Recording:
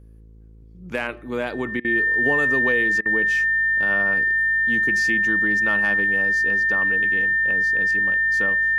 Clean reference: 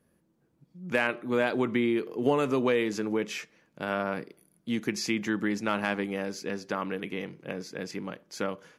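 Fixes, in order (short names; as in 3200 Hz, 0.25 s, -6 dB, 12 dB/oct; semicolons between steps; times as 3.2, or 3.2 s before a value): de-hum 54.6 Hz, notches 9; notch 1800 Hz, Q 30; interpolate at 1.8/3.01, 45 ms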